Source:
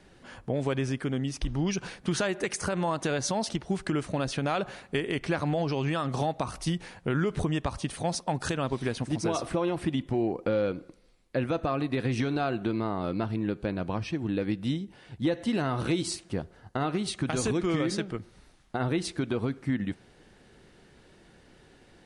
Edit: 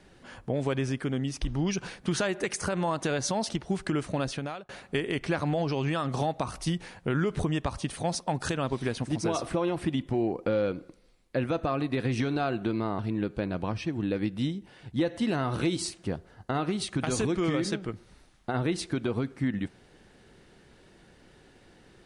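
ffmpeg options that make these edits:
-filter_complex "[0:a]asplit=3[a][b][c];[a]atrim=end=4.69,asetpts=PTS-STARTPTS,afade=t=out:st=4.23:d=0.46[d];[b]atrim=start=4.69:end=12.992,asetpts=PTS-STARTPTS,afade=t=in:d=0.004:c=hsin[e];[c]atrim=start=13.248[f];[d][e]concat=n=2:v=0:a=1[g];[g][f]acrossfade=d=0.004:c1=hsin:c2=hsin"

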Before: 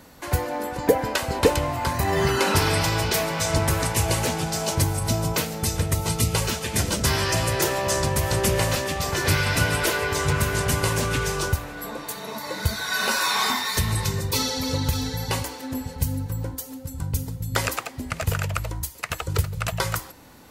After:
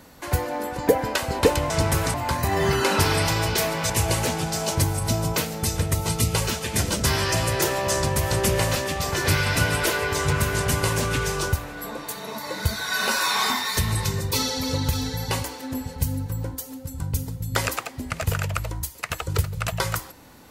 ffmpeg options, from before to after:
-filter_complex "[0:a]asplit=4[a][b][c][d];[a]atrim=end=1.702[e];[b]atrim=start=3.458:end=3.902[f];[c]atrim=start=1.698:end=3.462[g];[d]atrim=start=3.898[h];[e][f]acrossfade=d=0.004:c1=hsin:c2=hsin[i];[i][g]acrossfade=d=0.004:c1=hsin:c2=hsin[j];[j][h]acrossfade=d=0.004:c1=hsin:c2=hsin"

